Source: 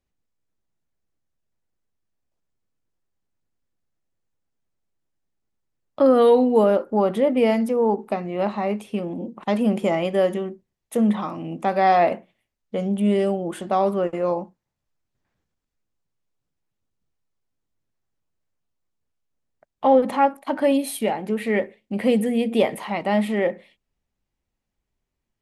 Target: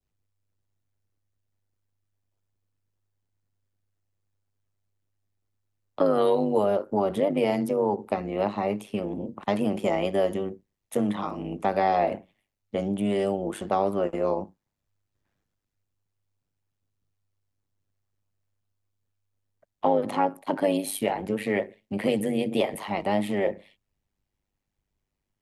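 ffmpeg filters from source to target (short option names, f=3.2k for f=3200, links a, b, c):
-filter_complex "[0:a]adynamicequalizer=threshold=0.0126:dfrequency=1600:dqfactor=1.1:tfrequency=1600:tqfactor=1.1:attack=5:release=100:ratio=0.375:range=2.5:mode=cutabove:tftype=bell,tremolo=f=100:d=0.788,acrossover=split=170|610[a][b][c];[a]acompressor=threshold=-43dB:ratio=4[d];[b]acompressor=threshold=-26dB:ratio=4[e];[c]acompressor=threshold=-26dB:ratio=4[f];[d][e][f]amix=inputs=3:normalize=0,volume=2dB"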